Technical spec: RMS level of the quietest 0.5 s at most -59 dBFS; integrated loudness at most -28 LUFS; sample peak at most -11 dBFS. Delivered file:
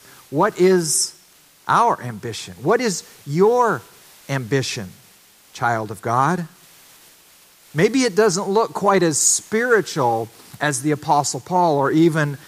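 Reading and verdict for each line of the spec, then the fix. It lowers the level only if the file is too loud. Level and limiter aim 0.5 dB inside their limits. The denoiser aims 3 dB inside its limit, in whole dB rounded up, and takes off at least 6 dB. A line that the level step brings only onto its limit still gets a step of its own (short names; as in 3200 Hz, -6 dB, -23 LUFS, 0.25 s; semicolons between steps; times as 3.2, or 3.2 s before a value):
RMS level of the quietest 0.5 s -52 dBFS: fail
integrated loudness -19.0 LUFS: fail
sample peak -5.0 dBFS: fail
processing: gain -9.5 dB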